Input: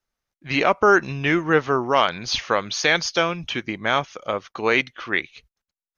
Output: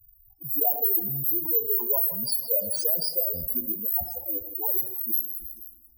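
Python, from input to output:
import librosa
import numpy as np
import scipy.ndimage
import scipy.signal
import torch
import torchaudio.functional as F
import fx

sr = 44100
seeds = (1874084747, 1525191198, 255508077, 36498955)

y = fx.cycle_switch(x, sr, every=2, mode='muted', at=(3.24, 4.59), fade=0.02)
y = (np.kron(y[::3], np.eye(3)[0]) * 3)[:len(y)]
y = 10.0 ** (-1.5 / 20.0) * np.tanh(y / 10.0 ** (-1.5 / 20.0))
y = fx.hpss(y, sr, part='harmonic', gain_db=-13)
y = scipy.signal.sosfilt(scipy.signal.ellip(3, 1.0, 40, [950.0, 4500.0], 'bandstop', fs=sr, output='sos'), y)
y = fx.spec_topn(y, sr, count=8)
y = fx.peak_eq(y, sr, hz=290.0, db=-7.0, octaves=1.5)
y = fx.echo_feedback(y, sr, ms=161, feedback_pct=43, wet_db=-21)
y = fx.rev_fdn(y, sr, rt60_s=0.86, lf_ratio=1.0, hf_ratio=0.55, size_ms=60.0, drr_db=13.0)
y = fx.env_flatten(y, sr, amount_pct=50)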